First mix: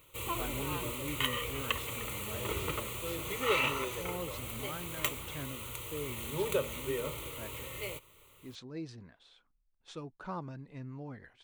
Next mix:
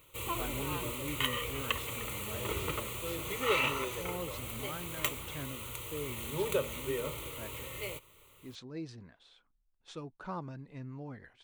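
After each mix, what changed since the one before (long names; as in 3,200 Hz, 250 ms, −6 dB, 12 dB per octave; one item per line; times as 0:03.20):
nothing changed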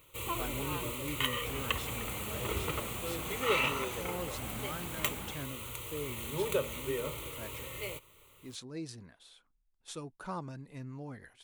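speech: remove high-frequency loss of the air 130 metres
second sound +9.5 dB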